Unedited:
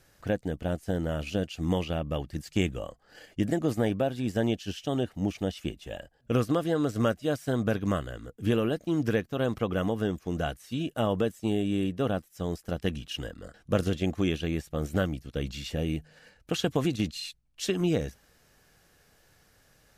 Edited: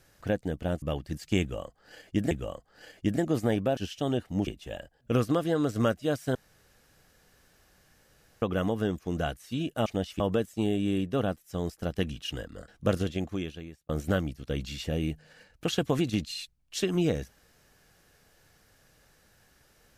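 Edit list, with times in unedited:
0.82–2.06 s: delete
2.65–3.55 s: loop, 2 plays
4.11–4.63 s: delete
5.33–5.67 s: move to 11.06 s
7.55–9.62 s: room tone
13.72–14.75 s: fade out linear

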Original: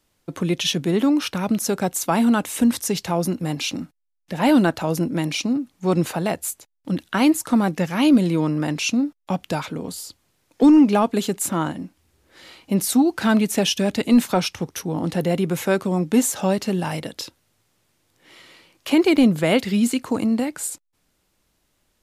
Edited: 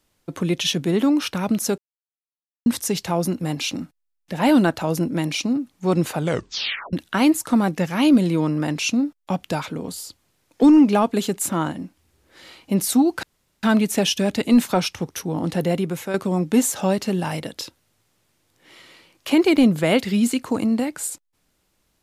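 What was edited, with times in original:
1.78–2.66 s: mute
6.13 s: tape stop 0.80 s
13.23 s: insert room tone 0.40 s
15.30–15.74 s: fade out, to -9 dB

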